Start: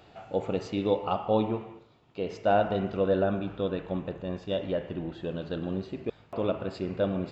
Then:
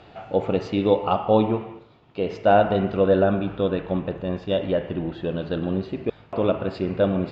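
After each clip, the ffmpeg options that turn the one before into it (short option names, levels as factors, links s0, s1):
-af "lowpass=4300,volume=2.24"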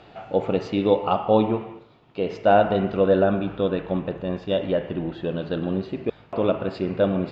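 -af "equalizer=f=79:w=2:g=-5.5"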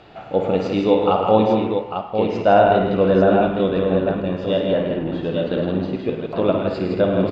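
-af "aecho=1:1:54|106|163|222|847:0.355|0.376|0.531|0.237|0.501,volume=1.26"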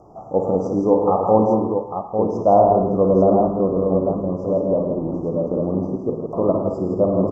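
-af "asuperstop=centerf=2600:order=20:qfactor=0.61"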